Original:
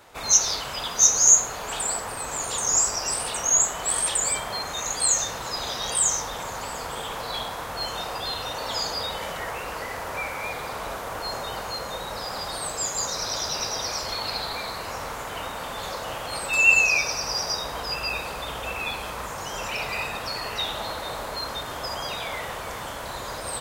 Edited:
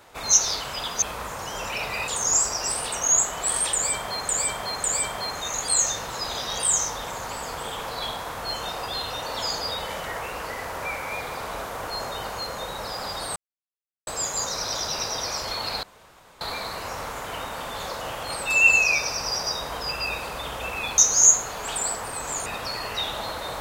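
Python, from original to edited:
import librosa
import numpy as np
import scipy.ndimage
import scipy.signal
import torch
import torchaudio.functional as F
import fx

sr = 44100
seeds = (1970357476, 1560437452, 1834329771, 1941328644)

y = fx.edit(x, sr, fx.swap(start_s=1.02, length_s=1.48, other_s=19.01, other_length_s=1.06),
    fx.repeat(start_s=4.16, length_s=0.55, count=3),
    fx.insert_silence(at_s=12.68, length_s=0.71),
    fx.insert_room_tone(at_s=14.44, length_s=0.58), tone=tone)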